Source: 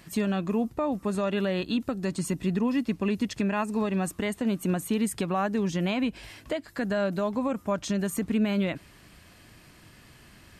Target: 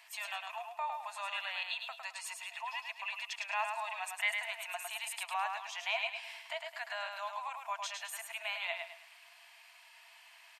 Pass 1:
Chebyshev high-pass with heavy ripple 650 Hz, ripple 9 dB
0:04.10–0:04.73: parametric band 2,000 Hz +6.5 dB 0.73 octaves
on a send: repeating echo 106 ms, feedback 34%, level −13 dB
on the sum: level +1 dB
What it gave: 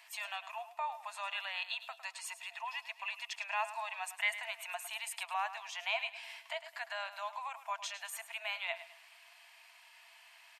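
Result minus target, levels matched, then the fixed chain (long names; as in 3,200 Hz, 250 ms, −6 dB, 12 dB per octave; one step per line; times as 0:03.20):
echo-to-direct −8 dB
Chebyshev high-pass with heavy ripple 650 Hz, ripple 9 dB
0:04.10–0:04.73: parametric band 2,000 Hz +6.5 dB 0.73 octaves
on a send: repeating echo 106 ms, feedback 34%, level −5 dB
on the sum: level +1 dB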